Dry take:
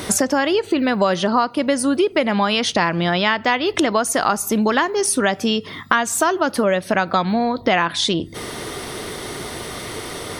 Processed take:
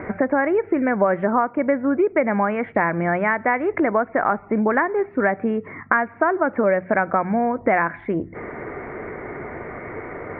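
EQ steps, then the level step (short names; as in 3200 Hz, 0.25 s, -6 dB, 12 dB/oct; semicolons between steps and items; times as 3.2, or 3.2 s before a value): rippled Chebyshev low-pass 2300 Hz, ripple 3 dB; notches 60/120/180 Hz; 0.0 dB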